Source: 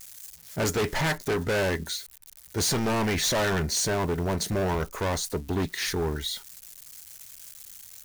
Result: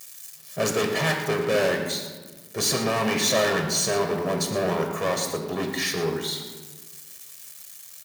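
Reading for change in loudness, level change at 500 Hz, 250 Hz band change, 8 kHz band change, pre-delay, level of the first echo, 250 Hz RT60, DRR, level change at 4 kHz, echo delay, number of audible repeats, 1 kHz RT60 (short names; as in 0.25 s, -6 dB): +2.5 dB, +4.0 dB, +1.0 dB, +2.5 dB, 6 ms, -13.0 dB, 1.7 s, 3.5 dB, +3.0 dB, 0.114 s, 1, 1.2 s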